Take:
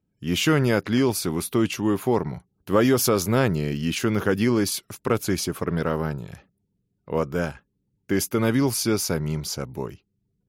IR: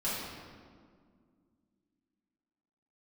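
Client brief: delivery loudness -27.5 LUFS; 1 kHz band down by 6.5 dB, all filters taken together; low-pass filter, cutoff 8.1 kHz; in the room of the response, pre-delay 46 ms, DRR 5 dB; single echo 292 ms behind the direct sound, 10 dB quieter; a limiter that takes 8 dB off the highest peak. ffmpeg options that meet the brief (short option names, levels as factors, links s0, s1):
-filter_complex "[0:a]lowpass=8100,equalizer=f=1000:t=o:g=-9,alimiter=limit=0.141:level=0:latency=1,aecho=1:1:292:0.316,asplit=2[s0][s1];[1:a]atrim=start_sample=2205,adelay=46[s2];[s1][s2]afir=irnorm=-1:irlink=0,volume=0.251[s3];[s0][s3]amix=inputs=2:normalize=0,volume=0.841"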